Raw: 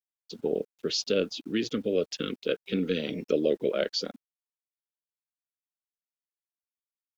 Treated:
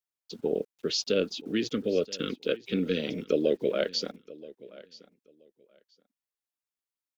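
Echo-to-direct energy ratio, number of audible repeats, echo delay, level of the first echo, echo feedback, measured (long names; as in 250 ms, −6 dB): −20.0 dB, 2, 977 ms, −20.0 dB, 18%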